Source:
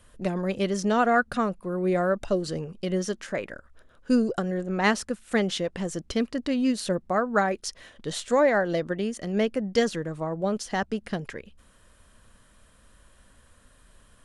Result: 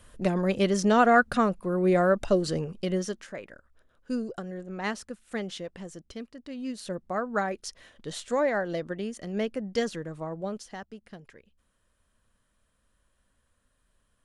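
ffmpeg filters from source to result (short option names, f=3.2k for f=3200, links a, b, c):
-af "volume=13dB,afade=t=out:st=2.65:d=0.69:silence=0.281838,afade=t=out:st=5.65:d=0.73:silence=0.446684,afade=t=in:st=6.38:d=0.86:silence=0.281838,afade=t=out:st=10.32:d=0.52:silence=0.316228"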